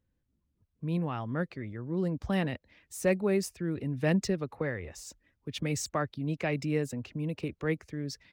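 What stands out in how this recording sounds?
noise floor -78 dBFS; spectral tilt -6.0 dB/octave

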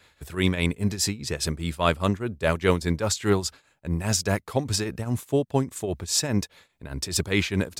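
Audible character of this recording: tremolo triangle 4.9 Hz, depth 80%

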